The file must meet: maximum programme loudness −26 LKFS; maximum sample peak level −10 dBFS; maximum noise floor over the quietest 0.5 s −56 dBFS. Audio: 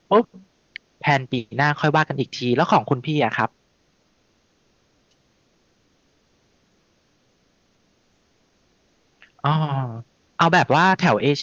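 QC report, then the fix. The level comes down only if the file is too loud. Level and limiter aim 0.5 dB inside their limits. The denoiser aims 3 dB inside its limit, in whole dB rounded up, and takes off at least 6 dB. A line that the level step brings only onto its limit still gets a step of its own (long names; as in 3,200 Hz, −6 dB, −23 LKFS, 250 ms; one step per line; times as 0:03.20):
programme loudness −20.5 LKFS: out of spec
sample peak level −4.5 dBFS: out of spec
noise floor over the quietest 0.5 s −64 dBFS: in spec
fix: level −6 dB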